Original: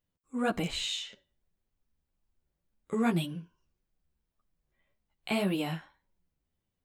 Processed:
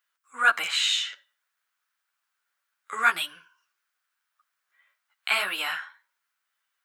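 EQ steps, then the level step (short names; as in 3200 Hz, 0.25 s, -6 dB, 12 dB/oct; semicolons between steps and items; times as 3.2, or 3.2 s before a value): resonant high-pass 1400 Hz, resonance Q 3.3; +8.5 dB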